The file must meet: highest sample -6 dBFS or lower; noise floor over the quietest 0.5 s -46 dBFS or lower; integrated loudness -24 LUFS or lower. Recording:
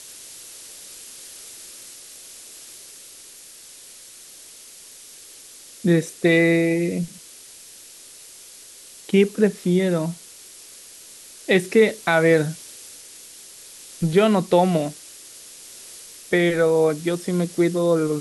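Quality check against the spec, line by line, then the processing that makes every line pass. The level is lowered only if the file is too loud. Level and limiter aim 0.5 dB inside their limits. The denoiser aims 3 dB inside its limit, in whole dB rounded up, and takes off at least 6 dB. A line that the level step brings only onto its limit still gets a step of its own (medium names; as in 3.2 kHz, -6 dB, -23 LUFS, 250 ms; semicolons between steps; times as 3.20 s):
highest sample -5.5 dBFS: fail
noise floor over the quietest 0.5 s -44 dBFS: fail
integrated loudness -20.0 LUFS: fail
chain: trim -4.5 dB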